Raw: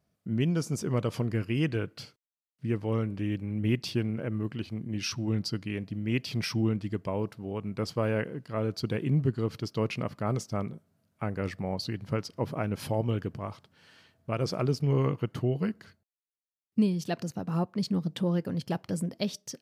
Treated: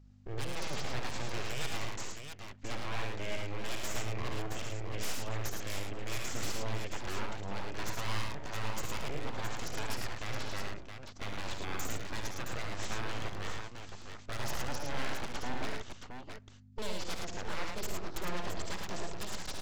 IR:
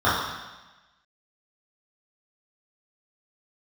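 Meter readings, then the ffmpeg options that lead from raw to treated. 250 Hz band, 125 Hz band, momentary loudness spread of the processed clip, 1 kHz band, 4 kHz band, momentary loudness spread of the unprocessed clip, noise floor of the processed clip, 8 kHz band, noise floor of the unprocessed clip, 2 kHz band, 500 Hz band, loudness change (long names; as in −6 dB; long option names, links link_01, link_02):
−15.0 dB, −12.0 dB, 7 LU, −0.5 dB, −1.0 dB, 7 LU, −50 dBFS, +2.5 dB, below −85 dBFS, +1.0 dB, −9.5 dB, −8.5 dB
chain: -filter_complex "[0:a]lowshelf=frequency=500:gain=-11,acrossover=split=380[link_01][link_02];[link_01]acompressor=threshold=-42dB:ratio=6[link_03];[link_03][link_02]amix=inputs=2:normalize=0,alimiter=level_in=2.5dB:limit=-24dB:level=0:latency=1:release=229,volume=-2.5dB,aresample=16000,aeval=exprs='abs(val(0))':channel_layout=same,aresample=44100,aeval=exprs='val(0)+0.000891*(sin(2*PI*50*n/s)+sin(2*PI*2*50*n/s)/2+sin(2*PI*3*50*n/s)/3+sin(2*PI*4*50*n/s)/4+sin(2*PI*5*50*n/s)/5)':channel_layout=same,aeval=exprs='0.0188*(abs(mod(val(0)/0.0188+3,4)-2)-1)':channel_layout=same,aecho=1:1:56|72|109|669:0.316|0.422|0.631|0.447,volume=5.5dB"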